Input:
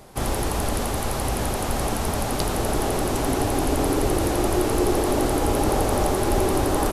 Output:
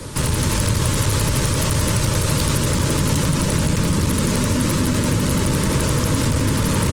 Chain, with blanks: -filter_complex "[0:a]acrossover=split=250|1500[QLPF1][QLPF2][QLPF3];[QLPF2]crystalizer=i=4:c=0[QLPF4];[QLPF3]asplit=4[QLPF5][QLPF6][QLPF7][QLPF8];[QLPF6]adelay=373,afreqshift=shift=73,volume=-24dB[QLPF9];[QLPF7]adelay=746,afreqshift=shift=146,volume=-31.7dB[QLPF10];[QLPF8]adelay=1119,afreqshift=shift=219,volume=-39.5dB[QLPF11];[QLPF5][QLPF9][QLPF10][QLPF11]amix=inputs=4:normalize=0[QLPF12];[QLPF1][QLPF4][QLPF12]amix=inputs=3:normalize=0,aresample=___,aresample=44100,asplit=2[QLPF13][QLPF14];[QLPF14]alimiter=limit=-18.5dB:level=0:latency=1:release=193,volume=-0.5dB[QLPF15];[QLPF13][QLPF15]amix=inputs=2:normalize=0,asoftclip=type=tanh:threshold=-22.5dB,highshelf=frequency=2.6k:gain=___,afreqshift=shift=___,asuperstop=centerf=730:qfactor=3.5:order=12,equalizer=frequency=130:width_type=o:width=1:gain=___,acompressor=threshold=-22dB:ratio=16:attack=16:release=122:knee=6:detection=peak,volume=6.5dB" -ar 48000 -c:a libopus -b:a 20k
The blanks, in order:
22050, 9.5, -110, 13.5